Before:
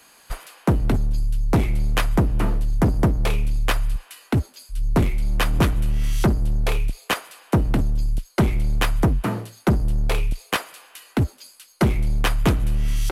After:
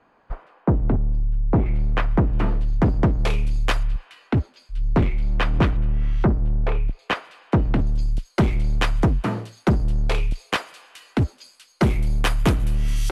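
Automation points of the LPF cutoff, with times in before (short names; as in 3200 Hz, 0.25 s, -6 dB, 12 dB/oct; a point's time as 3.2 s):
1100 Hz
from 1.66 s 2100 Hz
from 2.33 s 3600 Hz
from 3.19 s 7000 Hz
from 3.83 s 3200 Hz
from 5.77 s 1700 Hz
from 6.99 s 3300 Hz
from 7.87 s 6500 Hz
from 11.83 s 11000 Hz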